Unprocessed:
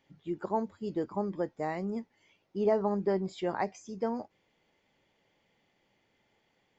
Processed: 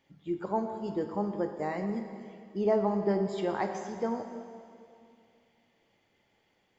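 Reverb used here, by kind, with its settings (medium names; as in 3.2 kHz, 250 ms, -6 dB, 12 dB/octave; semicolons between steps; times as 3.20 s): plate-style reverb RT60 2.4 s, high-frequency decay 0.95×, DRR 5 dB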